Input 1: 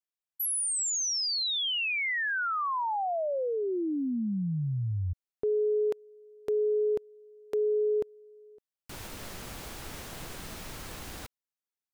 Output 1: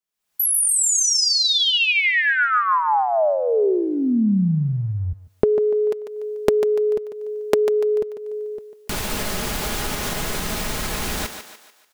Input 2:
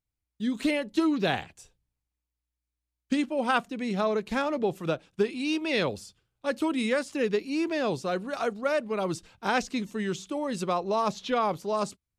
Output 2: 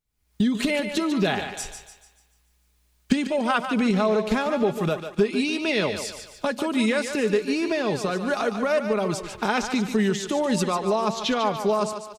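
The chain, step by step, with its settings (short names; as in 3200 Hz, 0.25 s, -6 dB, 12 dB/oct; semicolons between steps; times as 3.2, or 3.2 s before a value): recorder AGC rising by 59 dB/s, up to +21 dB; comb 4.8 ms, depth 37%; on a send: thinning echo 0.146 s, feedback 45%, high-pass 320 Hz, level -8 dB; on the sum: gain +1.5 dB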